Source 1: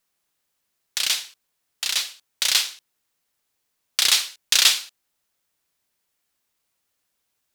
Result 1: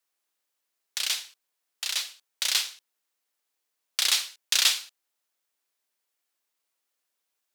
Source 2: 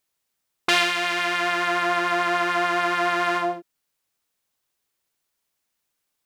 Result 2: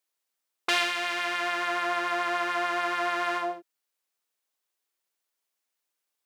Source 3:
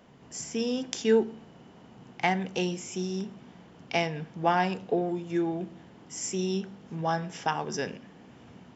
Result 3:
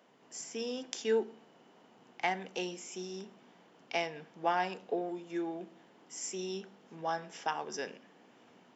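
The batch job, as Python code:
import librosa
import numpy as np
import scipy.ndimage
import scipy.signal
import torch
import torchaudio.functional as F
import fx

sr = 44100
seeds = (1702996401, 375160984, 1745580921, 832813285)

y = scipy.signal.sosfilt(scipy.signal.butter(2, 320.0, 'highpass', fs=sr, output='sos'), x)
y = y * 10.0 ** (-5.5 / 20.0)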